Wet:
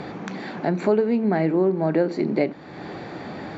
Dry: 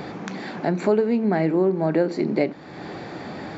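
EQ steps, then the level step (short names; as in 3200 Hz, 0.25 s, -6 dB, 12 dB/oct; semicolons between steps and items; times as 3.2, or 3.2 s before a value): air absorption 51 m; notch 5100 Hz, Q 27; 0.0 dB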